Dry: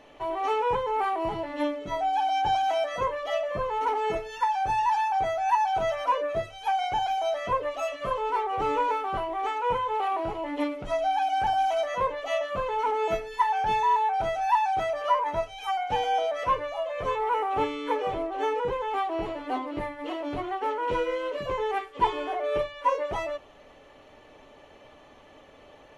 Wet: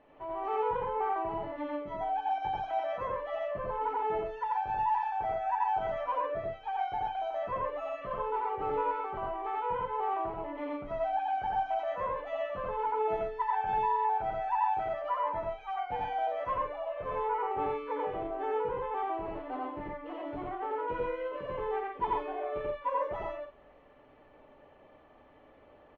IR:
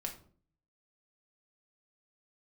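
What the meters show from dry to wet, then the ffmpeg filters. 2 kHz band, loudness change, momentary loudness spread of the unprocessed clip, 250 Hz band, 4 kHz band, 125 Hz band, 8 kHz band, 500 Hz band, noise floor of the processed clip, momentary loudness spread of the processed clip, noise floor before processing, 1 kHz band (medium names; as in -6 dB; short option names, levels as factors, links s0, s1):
-8.5 dB, -6.0 dB, 6 LU, -7.0 dB, -15.5 dB, -5.5 dB, no reading, -5.5 dB, -59 dBFS, 7 LU, -53 dBFS, -5.5 dB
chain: -filter_complex "[0:a]lowpass=1900,asplit=2[s0][s1];[s1]aecho=0:1:87.46|131.2:1|0.501[s2];[s0][s2]amix=inputs=2:normalize=0,volume=0.355"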